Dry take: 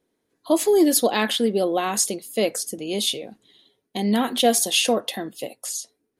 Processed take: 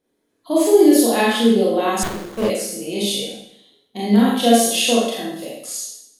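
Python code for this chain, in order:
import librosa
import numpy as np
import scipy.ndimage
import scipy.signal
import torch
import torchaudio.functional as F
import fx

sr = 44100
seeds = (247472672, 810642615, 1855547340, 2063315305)

y = fx.hpss(x, sr, part='harmonic', gain_db=6)
y = fx.rev_schroeder(y, sr, rt60_s=0.72, comb_ms=27, drr_db=-6.0)
y = fx.running_max(y, sr, window=17, at=(2.03, 2.5))
y = y * 10.0 ** (-7.0 / 20.0)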